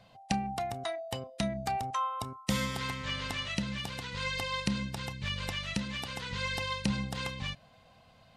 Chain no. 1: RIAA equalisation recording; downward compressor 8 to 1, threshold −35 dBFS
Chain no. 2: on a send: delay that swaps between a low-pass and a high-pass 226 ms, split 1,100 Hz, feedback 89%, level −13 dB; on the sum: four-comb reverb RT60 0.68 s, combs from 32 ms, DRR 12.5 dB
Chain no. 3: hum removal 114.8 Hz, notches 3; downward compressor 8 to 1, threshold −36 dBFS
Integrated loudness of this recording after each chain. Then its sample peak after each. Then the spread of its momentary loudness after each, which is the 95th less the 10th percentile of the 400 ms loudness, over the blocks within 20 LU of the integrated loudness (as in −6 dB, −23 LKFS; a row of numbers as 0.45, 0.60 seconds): −37.5, −33.5, −40.0 LKFS; −16.5, −15.0, −18.5 dBFS; 4, 5, 3 LU